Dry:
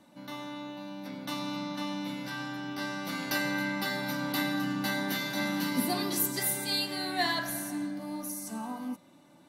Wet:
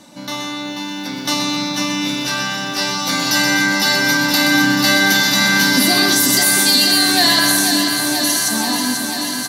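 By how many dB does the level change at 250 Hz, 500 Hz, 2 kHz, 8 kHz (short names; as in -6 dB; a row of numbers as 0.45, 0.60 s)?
+14.0, +13.0, +19.0, +21.5 dB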